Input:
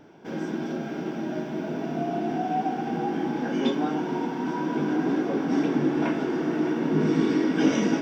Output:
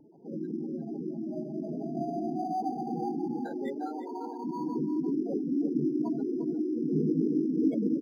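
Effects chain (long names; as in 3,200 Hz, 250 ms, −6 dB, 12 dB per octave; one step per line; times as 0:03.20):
0:03.45–0:04.45: high-pass filter 390 Hz 12 dB per octave
gate on every frequency bin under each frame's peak −10 dB strong
single-tap delay 351 ms −11.5 dB
linearly interpolated sample-rate reduction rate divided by 8×
level −4 dB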